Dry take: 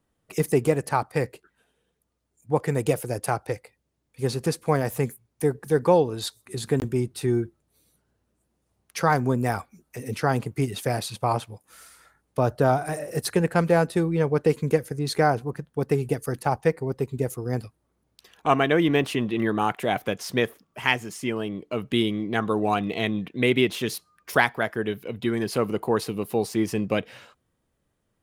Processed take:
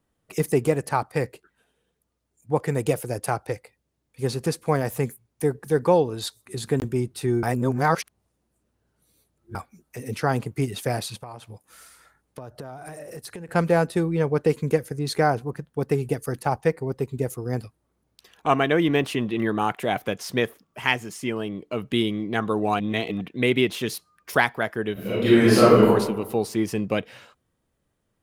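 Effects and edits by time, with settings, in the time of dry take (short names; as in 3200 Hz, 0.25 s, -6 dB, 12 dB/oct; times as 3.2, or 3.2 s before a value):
7.43–9.55 reverse
11.17–13.49 compressor, threshold -35 dBFS
22.8–23.21 reverse
24.93–25.86 reverb throw, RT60 1.1 s, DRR -11 dB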